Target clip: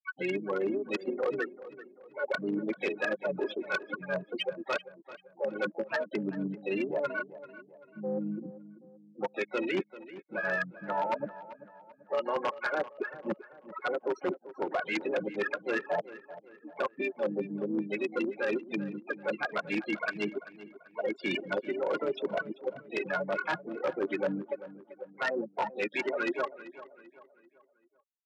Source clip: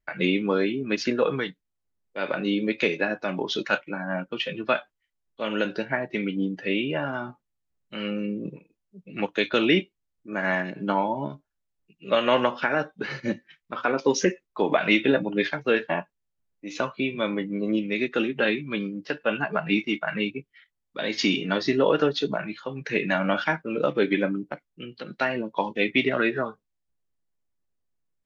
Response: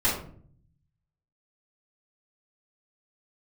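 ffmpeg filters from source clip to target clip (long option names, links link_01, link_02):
-filter_complex "[0:a]afftfilt=real='re*gte(hypot(re,im),0.178)':imag='im*gte(hypot(re,im),0.178)':win_size=1024:overlap=0.75,acrossover=split=380 3200:gain=0.2 1 0.112[link_01][link_02][link_03];[link_01][link_02][link_03]amix=inputs=3:normalize=0,aecho=1:1:5.5:0.53,areverse,acompressor=threshold=-32dB:ratio=16,areverse,asplit=3[link_04][link_05][link_06];[link_05]asetrate=33038,aresample=44100,atempo=1.33484,volume=-12dB[link_07];[link_06]asetrate=66075,aresample=44100,atempo=0.66742,volume=-17dB[link_08];[link_04][link_07][link_08]amix=inputs=3:normalize=0,adynamicsmooth=sensitivity=1.5:basefreq=4100,aeval=exprs='0.0668*(cos(1*acos(clip(val(0)/0.0668,-1,1)))-cos(1*PI/2))+0.00668*(cos(3*acos(clip(val(0)/0.0668,-1,1)))-cos(3*PI/2))+0.00266*(cos(5*acos(clip(val(0)/0.0668,-1,1)))-cos(5*PI/2))+0.000841*(cos(6*acos(clip(val(0)/0.0668,-1,1)))-cos(6*PI/2))':channel_layout=same,aeval=exprs='0.0355*(abs(mod(val(0)/0.0355+3,4)-2)-1)':channel_layout=same,highpass=170,lowpass=6200,asplit=2[link_09][link_10];[link_10]adelay=389,lowpass=frequency=3200:poles=1,volume=-15.5dB,asplit=2[link_11][link_12];[link_12]adelay=389,lowpass=frequency=3200:poles=1,volume=0.42,asplit=2[link_13][link_14];[link_14]adelay=389,lowpass=frequency=3200:poles=1,volume=0.42,asplit=2[link_15][link_16];[link_16]adelay=389,lowpass=frequency=3200:poles=1,volume=0.42[link_17];[link_11][link_13][link_15][link_17]amix=inputs=4:normalize=0[link_18];[link_09][link_18]amix=inputs=2:normalize=0,volume=6.5dB"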